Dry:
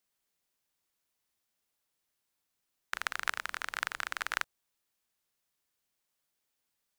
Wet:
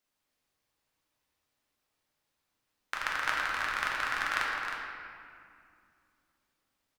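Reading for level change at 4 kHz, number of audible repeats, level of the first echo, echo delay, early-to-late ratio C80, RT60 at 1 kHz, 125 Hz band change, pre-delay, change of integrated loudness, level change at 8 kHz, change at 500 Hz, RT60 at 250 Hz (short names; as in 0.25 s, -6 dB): +3.0 dB, 1, -8.0 dB, 0.313 s, 0.0 dB, 2.3 s, n/a, 4 ms, +4.0 dB, -1.0 dB, +6.5 dB, 3.4 s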